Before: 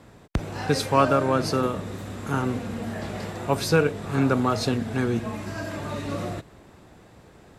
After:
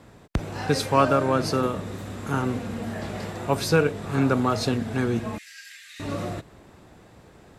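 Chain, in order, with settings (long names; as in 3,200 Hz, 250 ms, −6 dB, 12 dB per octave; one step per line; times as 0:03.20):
0:05.38–0:06.00: elliptic high-pass filter 1,800 Hz, stop band 50 dB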